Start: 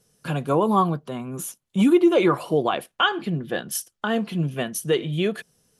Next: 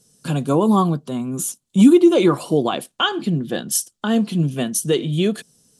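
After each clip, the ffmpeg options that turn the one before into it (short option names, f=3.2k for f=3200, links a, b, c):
-af "equalizer=f=125:t=o:w=1:g=3,equalizer=f=250:t=o:w=1:g=8,equalizer=f=2k:t=o:w=1:g=-4,equalizer=f=4k:t=o:w=1:g=5,equalizer=f=8k:t=o:w=1:g=11"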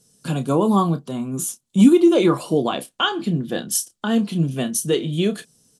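-filter_complex "[0:a]asplit=2[a][b];[b]adelay=30,volume=-10.5dB[c];[a][c]amix=inputs=2:normalize=0,volume=-1.5dB"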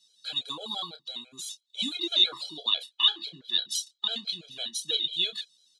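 -af "lowpass=f=3.8k:t=q:w=12,aderivative,afftfilt=real='re*gt(sin(2*PI*6*pts/sr)*(1-2*mod(floor(b*sr/1024/430),2)),0)':imag='im*gt(sin(2*PI*6*pts/sr)*(1-2*mod(floor(b*sr/1024/430),2)),0)':win_size=1024:overlap=0.75,volume=3dB"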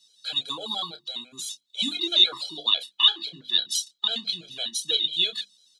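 -af "bandreject=f=50:t=h:w=6,bandreject=f=100:t=h:w=6,bandreject=f=150:t=h:w=6,bandreject=f=200:t=h:w=6,bandreject=f=250:t=h:w=6,bandreject=f=300:t=h:w=6,bandreject=f=350:t=h:w=6,volume=4dB"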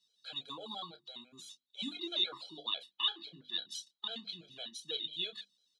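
-af "lowpass=f=2k:p=1,volume=-8.5dB"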